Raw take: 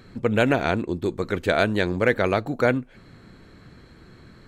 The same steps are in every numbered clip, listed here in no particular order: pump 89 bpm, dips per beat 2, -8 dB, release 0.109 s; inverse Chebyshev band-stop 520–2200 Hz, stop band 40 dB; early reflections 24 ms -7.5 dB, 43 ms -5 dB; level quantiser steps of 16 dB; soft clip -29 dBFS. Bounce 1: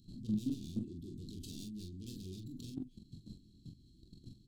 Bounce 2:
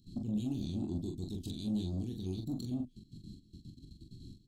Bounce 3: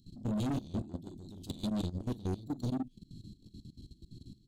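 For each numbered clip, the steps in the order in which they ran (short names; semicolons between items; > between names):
pump > soft clip > inverse Chebyshev band-stop > level quantiser > early reflections; pump > level quantiser > inverse Chebyshev band-stop > soft clip > early reflections; early reflections > pump > inverse Chebyshev band-stop > soft clip > level quantiser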